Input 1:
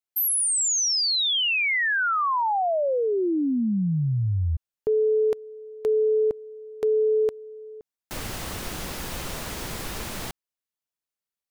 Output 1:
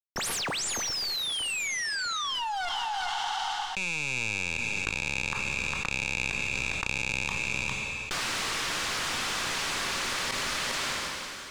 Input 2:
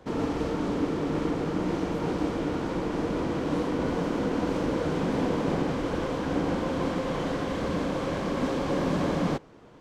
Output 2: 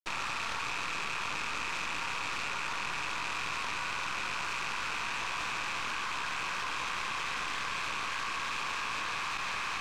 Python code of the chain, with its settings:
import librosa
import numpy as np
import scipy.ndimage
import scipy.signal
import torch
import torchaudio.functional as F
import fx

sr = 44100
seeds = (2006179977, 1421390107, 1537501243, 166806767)

p1 = fx.rattle_buzz(x, sr, strikes_db=-34.0, level_db=-24.0)
p2 = scipy.signal.sosfilt(scipy.signal.butter(8, 990.0, 'highpass', fs=sr, output='sos'), p1)
p3 = fx.high_shelf(p2, sr, hz=7600.0, db=8.5)
p4 = fx.rider(p3, sr, range_db=4, speed_s=2.0)
p5 = p3 + F.gain(torch.from_numpy(p4), -1.0).numpy()
p6 = 10.0 ** (-24.0 / 20.0) * (np.abs((p5 / 10.0 ** (-24.0 / 20.0) + 3.0) % 4.0 - 2.0) - 1.0)
p7 = fx.cheby_harmonics(p6, sr, harmonics=(2, 4, 5, 8), levels_db=(-24, -30, -37, -14), full_scale_db=-24.0)
p8 = fx.quant_dither(p7, sr, seeds[0], bits=6, dither='none')
p9 = 10.0 ** (-29.5 / 20.0) * np.tanh(p8 / 10.0 ** (-29.5 / 20.0))
p10 = fx.air_absorb(p9, sr, metres=100.0)
p11 = p10 + fx.echo_single(p10, sr, ms=405, db=-22.5, dry=0)
p12 = fx.rev_double_slope(p11, sr, seeds[1], early_s=0.24, late_s=3.1, knee_db=-18, drr_db=13.0)
y = fx.env_flatten(p12, sr, amount_pct=100)